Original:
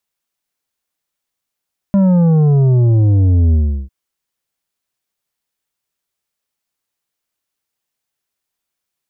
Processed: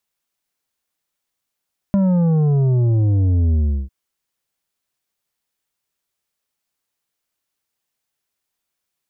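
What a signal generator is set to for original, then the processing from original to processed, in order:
sub drop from 200 Hz, over 1.95 s, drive 8 dB, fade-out 0.36 s, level -9 dB
compressor, threshold -15 dBFS

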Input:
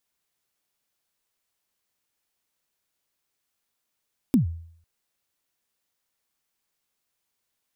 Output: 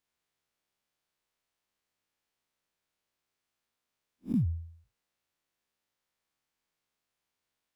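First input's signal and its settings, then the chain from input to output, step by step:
kick drum length 0.50 s, from 290 Hz, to 83 Hz, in 0.121 s, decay 0.61 s, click on, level -12.5 dB
time blur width 99 ms; high shelf 6400 Hz -11 dB

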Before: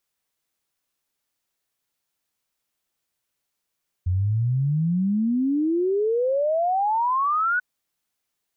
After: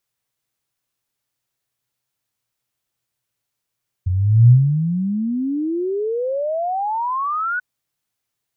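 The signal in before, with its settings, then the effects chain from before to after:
log sweep 87 Hz -> 1500 Hz 3.54 s -19 dBFS
bell 120 Hz +14 dB 0.38 oct

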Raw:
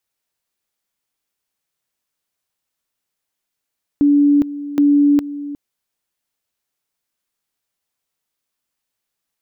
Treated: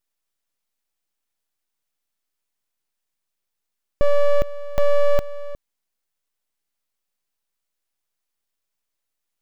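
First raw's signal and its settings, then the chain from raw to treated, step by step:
two-level tone 288 Hz -9 dBFS, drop 15 dB, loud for 0.41 s, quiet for 0.36 s, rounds 2
full-wave rectifier

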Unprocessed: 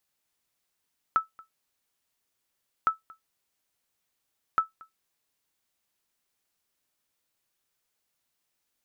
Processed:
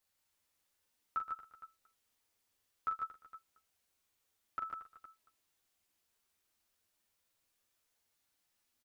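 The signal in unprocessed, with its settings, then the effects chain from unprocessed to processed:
sonar ping 1310 Hz, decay 0.14 s, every 1.71 s, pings 3, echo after 0.23 s, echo -25 dB -14 dBFS
limiter -25.5 dBFS; chorus voices 6, 0.4 Hz, delay 11 ms, depth 2.2 ms; tapped delay 42/121/147/462 ms -6.5/-12/-4.5/-16 dB

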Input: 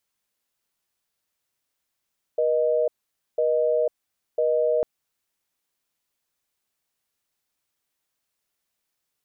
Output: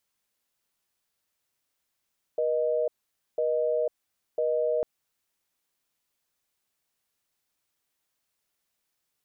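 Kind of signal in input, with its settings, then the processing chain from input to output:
call progress tone busy tone, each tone -21.5 dBFS 2.45 s
limiter -20 dBFS

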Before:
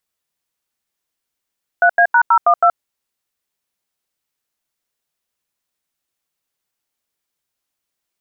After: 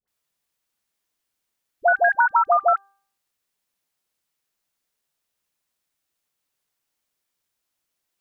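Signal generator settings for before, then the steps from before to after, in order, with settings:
DTMF "3A#012", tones 75 ms, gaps 86 ms, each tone -10.5 dBFS
de-hum 394.9 Hz, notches 4; dispersion highs, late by 78 ms, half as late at 810 Hz; compressor, threshold -14 dBFS

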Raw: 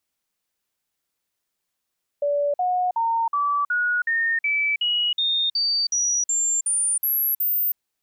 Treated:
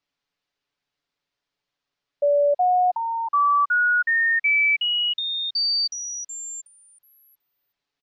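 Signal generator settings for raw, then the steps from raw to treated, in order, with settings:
stepped sine 577 Hz up, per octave 3, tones 15, 0.32 s, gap 0.05 s -19 dBFS
LPF 5100 Hz 24 dB/oct; comb 7 ms, depth 57%

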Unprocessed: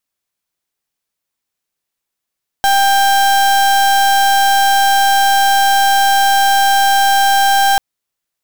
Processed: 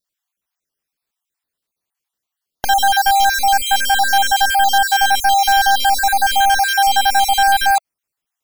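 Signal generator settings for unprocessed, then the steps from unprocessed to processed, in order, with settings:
pulse 792 Hz, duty 35% -11 dBFS 5.14 s
random spectral dropouts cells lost 44%

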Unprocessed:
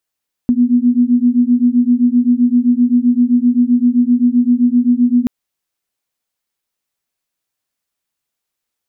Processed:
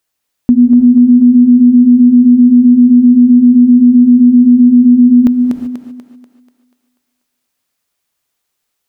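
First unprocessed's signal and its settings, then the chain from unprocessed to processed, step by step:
beating tones 240 Hz, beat 7.7 Hz, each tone -12 dBFS 4.78 s
thinning echo 0.243 s, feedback 49%, high-pass 240 Hz, level -6 dB; non-linear reverb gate 0.41 s rising, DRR 10 dB; maximiser +7 dB

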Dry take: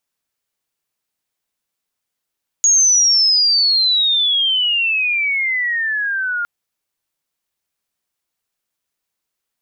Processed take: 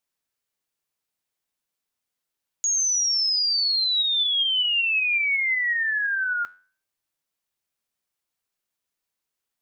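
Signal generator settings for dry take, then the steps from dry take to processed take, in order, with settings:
chirp logarithmic 6700 Hz -> 1400 Hz -9 dBFS -> -18 dBFS 3.81 s
limiter -15 dBFS; flange 0.26 Hz, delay 8.2 ms, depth 4.5 ms, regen +85%

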